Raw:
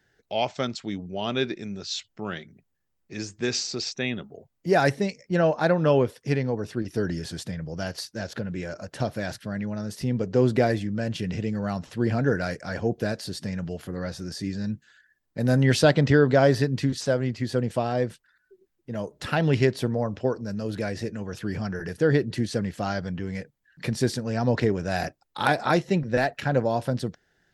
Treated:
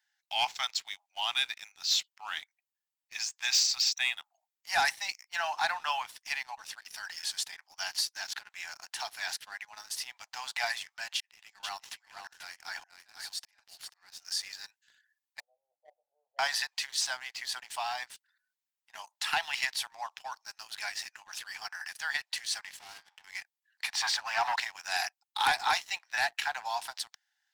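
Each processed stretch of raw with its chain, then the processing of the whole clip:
11.14–14.25 s: slow attack 644 ms + delay 489 ms -7 dB
15.40–16.39 s: steep low-pass 530 Hz 48 dB/octave + doubling 20 ms -6 dB
22.77–23.24 s: feedback comb 76 Hz, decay 0.31 s + valve stage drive 41 dB, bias 0.35 + three bands compressed up and down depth 40%
23.93–24.56 s: low-pass 8.4 kHz + overdrive pedal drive 21 dB, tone 1.5 kHz, clips at -9 dBFS + treble shelf 5 kHz -5.5 dB
whole clip: steep high-pass 800 Hz 72 dB/octave; peaking EQ 1.3 kHz -9 dB 1.1 oct; waveshaping leveller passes 2; trim -1.5 dB

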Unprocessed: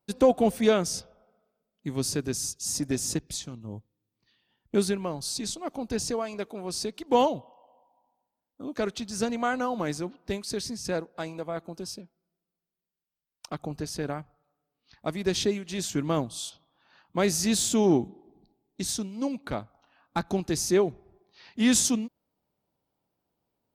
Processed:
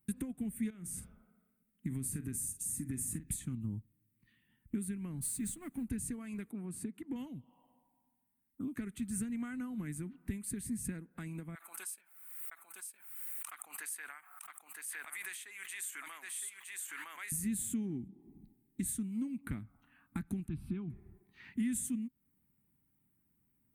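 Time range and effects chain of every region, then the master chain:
0.70–3.45 s: compression 8:1, threshold -31 dBFS + doubling 45 ms -13 dB
5.22–5.85 s: companding laws mixed up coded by mu + upward expansion, over -43 dBFS
6.51–7.16 s: high-pass 120 Hz + treble shelf 2.3 kHz -11.5 dB
11.55–17.32 s: high-pass 820 Hz 24 dB/octave + delay 962 ms -7.5 dB + swell ahead of each attack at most 47 dB/s
20.48–20.90 s: distance through air 250 m + static phaser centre 1.9 kHz, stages 6
whole clip: dynamic bell 930 Hz, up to -5 dB, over -38 dBFS, Q 1; compression 6:1, threshold -39 dBFS; FFT filter 250 Hz 0 dB, 570 Hz -25 dB, 2 kHz -3 dB, 5.3 kHz -27 dB, 8.7 kHz +3 dB; trim +6 dB

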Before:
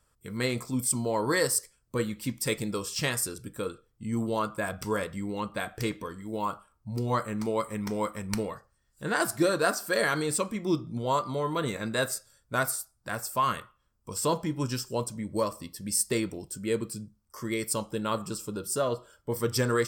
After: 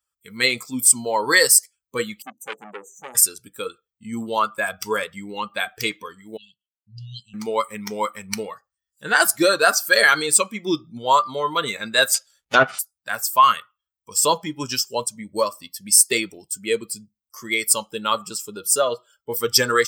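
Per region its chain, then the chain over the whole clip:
2.22–3.15 s: brick-wall FIR band-stop 870–5900 Hz + three-band isolator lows -23 dB, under 180 Hz, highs -15 dB, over 3.7 kHz + transformer saturation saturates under 1.8 kHz
6.37–7.34 s: brick-wall FIR band-stop 210–2600 Hz + distance through air 130 m + three bands expanded up and down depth 100%
12.14–12.79 s: square wave that keeps the level + low-pass that closes with the level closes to 1.6 kHz, closed at -19.5 dBFS + hum notches 60/120/180 Hz
whole clip: expander on every frequency bin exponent 1.5; high-pass 1.3 kHz 6 dB/octave; loudness maximiser +19 dB; trim -1 dB

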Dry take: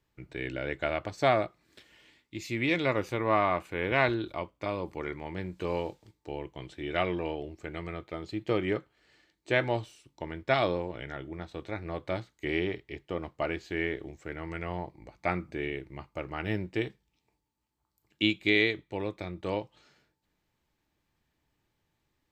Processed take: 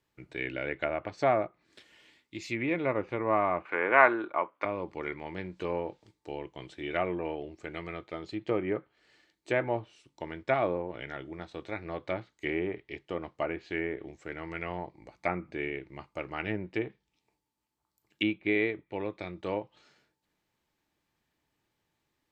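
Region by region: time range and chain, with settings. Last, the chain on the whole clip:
3.65–4.65 s: high-pass 260 Hz + peaking EQ 1.3 kHz +13 dB 1.6 oct
whole clip: dynamic bell 2.4 kHz, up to +6 dB, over -47 dBFS, Q 2.6; low-pass that closes with the level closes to 1.3 kHz, closed at -26 dBFS; bass shelf 110 Hz -10.5 dB

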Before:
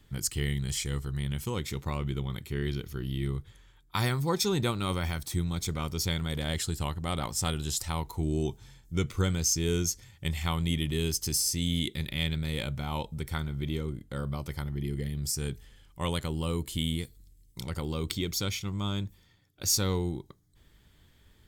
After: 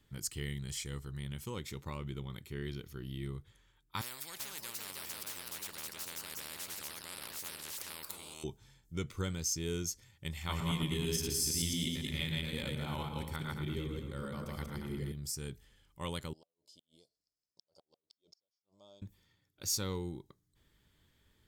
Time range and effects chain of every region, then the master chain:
4.01–8.44 s: peaking EQ 6.3 kHz -8.5 dB 0.28 oct + ever faster or slower copies 386 ms, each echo +2 st, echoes 2, each echo -6 dB + spectrum-flattening compressor 10:1
10.38–15.12 s: backward echo that repeats 113 ms, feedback 42%, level 0 dB + echo whose repeats swap between lows and highs 107 ms, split 2.2 kHz, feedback 53%, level -8 dB
16.33–19.02 s: two resonant band-passes 1.8 kHz, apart 3 oct + inverted gate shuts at -38 dBFS, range -38 dB
whole clip: bass shelf 81 Hz -6.5 dB; band-stop 720 Hz, Q 12; trim -7.5 dB

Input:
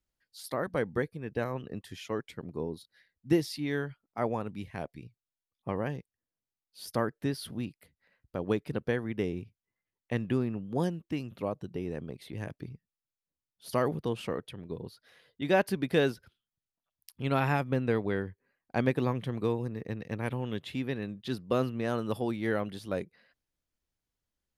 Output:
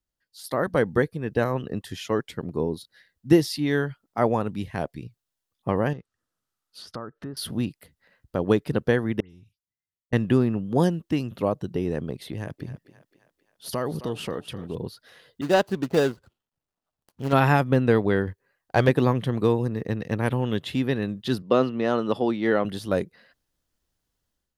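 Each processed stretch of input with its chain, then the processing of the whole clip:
5.93–7.37 s: peaking EQ 1.3 kHz +11.5 dB 0.35 oct + compression 2.5:1, threshold -47 dBFS + low-pass that closes with the level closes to 1.1 kHz, closed at -39.5 dBFS
9.20–10.13 s: amplifier tone stack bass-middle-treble 6-0-2 + compression, threshold -54 dBFS + phase dispersion highs, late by 108 ms, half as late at 2.7 kHz
12.32–14.75 s: compression 2:1, threshold -39 dBFS + thinning echo 264 ms, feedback 55%, high-pass 340 Hz, level -13.5 dB
15.41–17.33 s: median filter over 25 samples + bass shelf 450 Hz -6.5 dB
18.27–18.89 s: peaking EQ 240 Hz -11.5 dB 0.7 oct + waveshaping leveller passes 1
21.42–22.65 s: band-pass 190–4700 Hz + band-stop 1.6 kHz, Q 14
whole clip: peaking EQ 2.3 kHz -6 dB 0.25 oct; level rider gain up to 10.5 dB; trim -1.5 dB

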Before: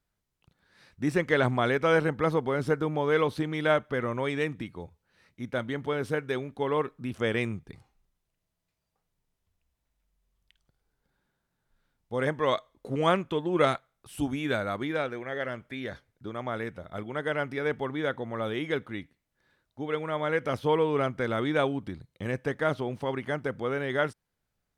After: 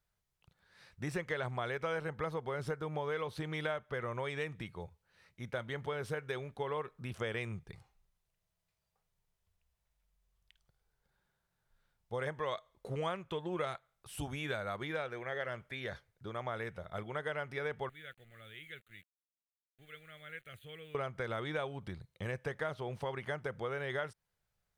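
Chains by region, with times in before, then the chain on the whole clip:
17.89–20.95 s: amplifier tone stack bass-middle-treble 5-5-5 + small samples zeroed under -57 dBFS + static phaser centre 2.3 kHz, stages 4
whole clip: peaking EQ 270 Hz -13 dB 0.6 oct; compression 5:1, threshold -32 dBFS; trim -2 dB

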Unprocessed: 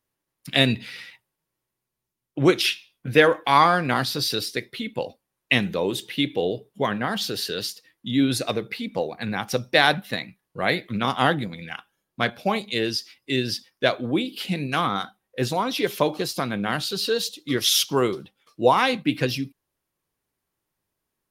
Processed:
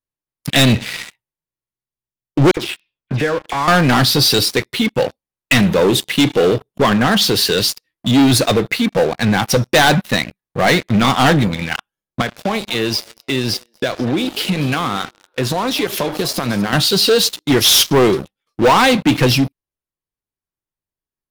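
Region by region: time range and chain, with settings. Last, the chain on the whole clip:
2.51–3.68 s: compression 3:1, threshold -33 dBFS + distance through air 210 m + phase dispersion lows, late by 60 ms, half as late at 2.6 kHz
12.21–16.73 s: high-pass 80 Hz + compression 4:1, threshold -30 dBFS + frequency-shifting echo 238 ms, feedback 46%, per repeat +110 Hz, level -16 dB
whole clip: bass shelf 76 Hz +11 dB; waveshaping leveller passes 5; trim -4 dB

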